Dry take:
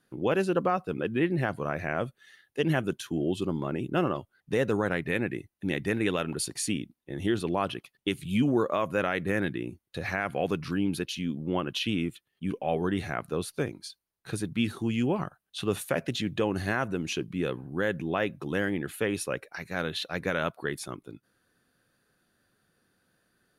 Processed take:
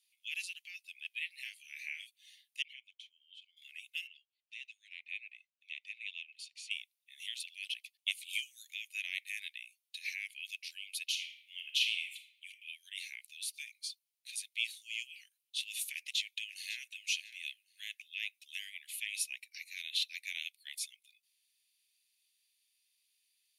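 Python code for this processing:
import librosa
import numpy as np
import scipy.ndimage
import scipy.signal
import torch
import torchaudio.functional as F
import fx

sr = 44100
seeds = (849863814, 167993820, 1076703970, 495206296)

y = fx.doubler(x, sr, ms=31.0, db=-4, at=(1.42, 2.07))
y = fx.vowel_filter(y, sr, vowel='i', at=(2.62, 3.57))
y = fx.ladder_bandpass(y, sr, hz=3000.0, resonance_pct=45, at=(4.07, 6.71))
y = fx.high_shelf(y, sr, hz=5300.0, db=8.0, at=(8.33, 8.74))
y = fx.reverb_throw(y, sr, start_s=11.05, length_s=1.42, rt60_s=0.84, drr_db=5.5)
y = fx.echo_throw(y, sr, start_s=15.93, length_s=1.04, ms=550, feedback_pct=20, wet_db=-12.5)
y = scipy.signal.sosfilt(scipy.signal.butter(12, 2200.0, 'highpass', fs=sr, output='sos'), y)
y = y * 10.0 ** (1.0 / 20.0)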